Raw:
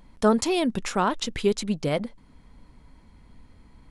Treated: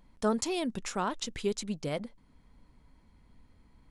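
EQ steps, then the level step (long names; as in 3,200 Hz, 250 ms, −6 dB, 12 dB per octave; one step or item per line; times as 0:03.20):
dynamic equaliser 7,000 Hz, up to +5 dB, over −49 dBFS, Q 1.1
−8.5 dB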